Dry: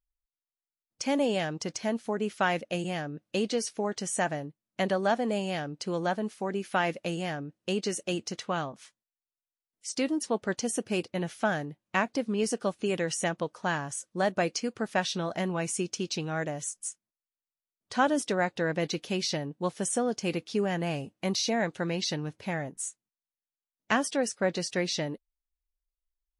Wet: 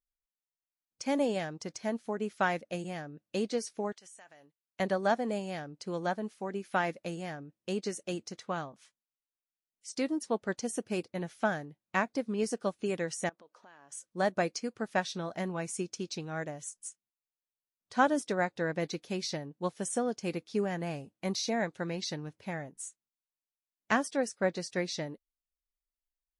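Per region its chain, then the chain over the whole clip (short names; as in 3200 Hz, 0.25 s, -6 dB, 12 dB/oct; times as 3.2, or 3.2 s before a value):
3.92–4.8 HPF 1300 Hz 6 dB/oct + compressor 4:1, threshold -43 dBFS
13.29–13.92 high shelf 4500 Hz -5 dB + compressor 10:1, threshold -42 dBFS + BPF 320–7500 Hz
whole clip: dynamic EQ 2900 Hz, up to -7 dB, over -54 dBFS, Q 5; upward expander 1.5:1, over -38 dBFS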